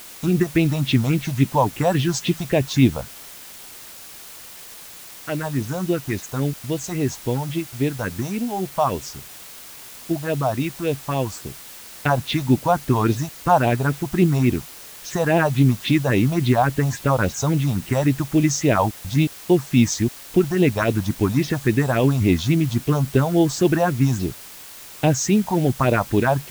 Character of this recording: phasing stages 4, 3.6 Hz, lowest notch 320–1400 Hz; a quantiser's noise floor 8-bit, dither triangular

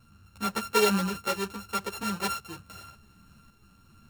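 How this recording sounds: a buzz of ramps at a fixed pitch in blocks of 32 samples; tremolo saw up 0.86 Hz, depth 35%; a shimmering, thickened sound

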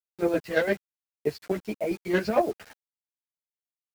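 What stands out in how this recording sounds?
chopped level 8.9 Hz, depth 60%, duty 40%; a quantiser's noise floor 8-bit, dither none; a shimmering, thickened sound

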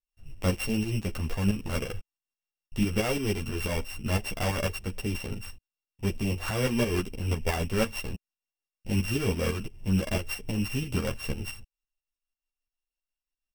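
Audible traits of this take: a buzz of ramps at a fixed pitch in blocks of 16 samples; tremolo saw up 6 Hz, depth 65%; a shimmering, thickened sound

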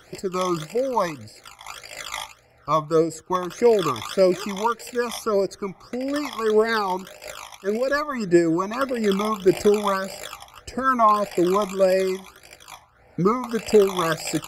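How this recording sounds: phasing stages 12, 1.7 Hz, lowest notch 460–1200 Hz; noise-modulated level

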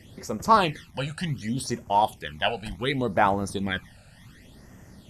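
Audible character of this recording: a quantiser's noise floor 10-bit, dither none; phasing stages 12, 0.68 Hz, lowest notch 330–3900 Hz; MP2

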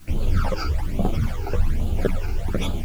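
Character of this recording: phasing stages 12, 1.2 Hz, lowest notch 180–1900 Hz; a quantiser's noise floor 10-bit, dither triangular; a shimmering, thickened sound

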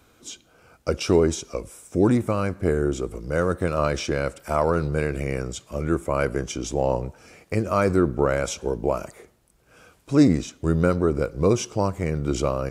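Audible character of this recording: noise floor -60 dBFS; spectral tilt -5.5 dB/oct

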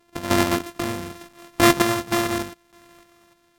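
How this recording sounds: a buzz of ramps at a fixed pitch in blocks of 128 samples; random-step tremolo 3.3 Hz, depth 75%; AAC

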